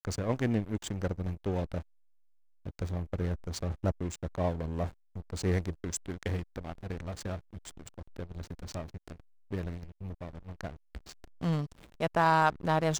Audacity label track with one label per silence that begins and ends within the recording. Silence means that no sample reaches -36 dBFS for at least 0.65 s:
1.810000	2.660000	silence